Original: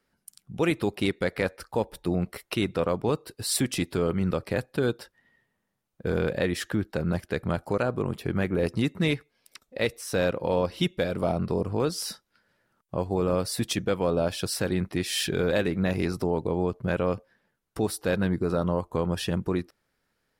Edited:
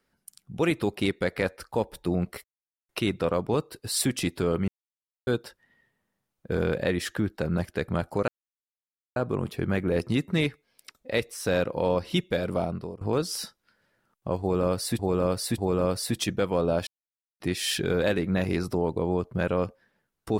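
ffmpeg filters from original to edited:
ffmpeg -i in.wav -filter_complex "[0:a]asplit=10[link_01][link_02][link_03][link_04][link_05][link_06][link_07][link_08][link_09][link_10];[link_01]atrim=end=2.44,asetpts=PTS-STARTPTS,afade=type=out:start_time=2.436:duration=0.004:curve=hsin,apad=pad_dur=0.45[link_11];[link_02]atrim=start=2.44:end=4.23,asetpts=PTS-STARTPTS,afade=type=in:duration=0.004:curve=hsin,afade=type=out:start_time=1.786:duration=0.004:curve=hsin[link_12];[link_03]atrim=start=4.23:end=4.82,asetpts=PTS-STARTPTS,volume=0[link_13];[link_04]atrim=start=4.82:end=7.83,asetpts=PTS-STARTPTS,afade=type=in:duration=0.004:curve=hsin,afade=type=out:start_time=3.006:duration=0.004:curve=hsin,apad=pad_dur=0.88[link_14];[link_05]atrim=start=7.83:end=11.68,asetpts=PTS-STARTPTS,afade=type=in:duration=0.004:curve=hsin,afade=type=out:start_time=3.36:duration=0.49:silence=0.0891251[link_15];[link_06]atrim=start=11.68:end=13.662,asetpts=PTS-STARTPTS,afade=type=in:duration=0.004:curve=hsin:silence=0.0891251[link_16];[link_07]atrim=start=13.068:end=13.662[link_17];[link_08]atrim=start=13.068:end=14.36,asetpts=PTS-STARTPTS,afade=type=out:start_time=1.288:duration=0.004:curve=hsin[link_18];[link_09]atrim=start=14.36:end=14.89,asetpts=PTS-STARTPTS,volume=0[link_19];[link_10]atrim=start=14.89,asetpts=PTS-STARTPTS,afade=type=in:duration=0.004:curve=hsin[link_20];[link_11][link_12][link_13][link_14][link_15][link_16]concat=n=6:v=0:a=1[link_21];[link_21][link_17]acrossfade=duration=0.004:curve1=hsin:curve2=hsin[link_22];[link_18][link_19][link_20]concat=n=3:v=0:a=1[link_23];[link_22][link_23]acrossfade=duration=0.004:curve1=hsin:curve2=hsin" out.wav

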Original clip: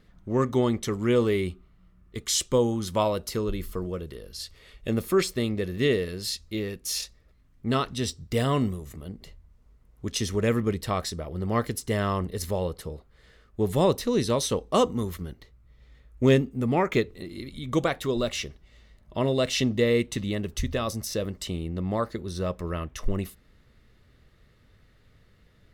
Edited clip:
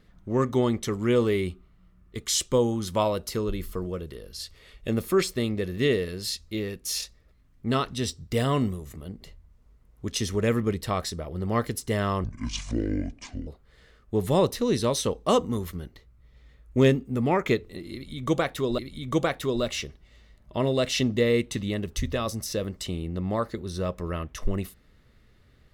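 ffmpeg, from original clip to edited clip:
ffmpeg -i in.wav -filter_complex "[0:a]asplit=4[link_01][link_02][link_03][link_04];[link_01]atrim=end=12.244[link_05];[link_02]atrim=start=12.24:end=12.93,asetpts=PTS-STARTPTS,asetrate=24696,aresample=44100,atrim=end_sample=54337,asetpts=PTS-STARTPTS[link_06];[link_03]atrim=start=12.926:end=18.242[link_07];[link_04]atrim=start=17.388[link_08];[link_05][link_06]acrossfade=duration=0.004:curve1=hsin:curve2=hsin[link_09];[link_09][link_07]acrossfade=duration=0.004:curve1=hsin:curve2=hsin[link_10];[link_10][link_08]acrossfade=duration=0.004:curve1=hsin:curve2=hsin" out.wav

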